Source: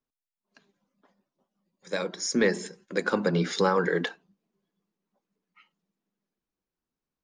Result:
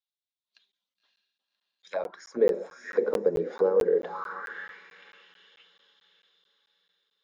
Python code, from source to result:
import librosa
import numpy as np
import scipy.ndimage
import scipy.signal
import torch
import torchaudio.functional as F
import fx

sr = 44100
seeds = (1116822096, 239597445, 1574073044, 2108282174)

p1 = fx.rider(x, sr, range_db=10, speed_s=0.5)
p2 = x + (p1 * 10.0 ** (1.0 / 20.0))
p3 = fx.echo_diffused(p2, sr, ms=564, feedback_pct=44, wet_db=-8.0)
p4 = fx.auto_wah(p3, sr, base_hz=460.0, top_hz=3700.0, q=4.7, full_db=-16.0, direction='down')
y = fx.buffer_crackle(p4, sr, first_s=0.72, period_s=0.22, block=512, kind='zero')